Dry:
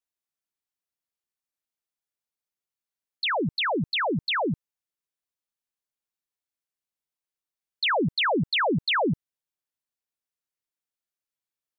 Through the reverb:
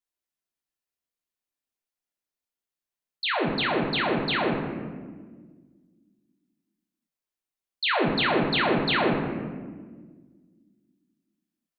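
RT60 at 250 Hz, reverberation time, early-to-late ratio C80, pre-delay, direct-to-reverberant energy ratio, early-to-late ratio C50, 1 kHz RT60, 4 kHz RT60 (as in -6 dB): 2.4 s, 1.6 s, 5.0 dB, 3 ms, -1.0 dB, 3.0 dB, 1.3 s, 0.85 s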